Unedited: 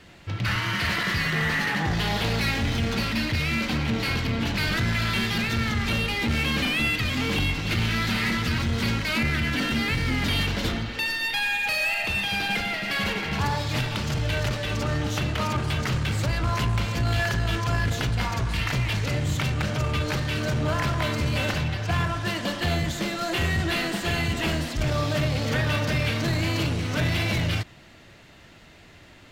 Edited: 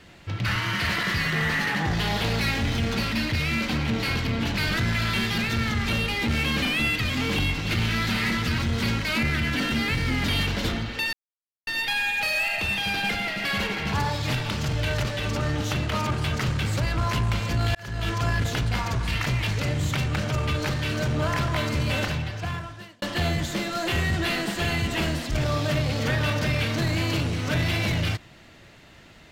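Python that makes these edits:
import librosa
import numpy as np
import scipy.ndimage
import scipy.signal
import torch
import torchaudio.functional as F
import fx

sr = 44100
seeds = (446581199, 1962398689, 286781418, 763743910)

y = fx.edit(x, sr, fx.insert_silence(at_s=11.13, length_s=0.54),
    fx.fade_in_span(start_s=17.21, length_s=0.37),
    fx.fade_out_span(start_s=21.45, length_s=1.03), tone=tone)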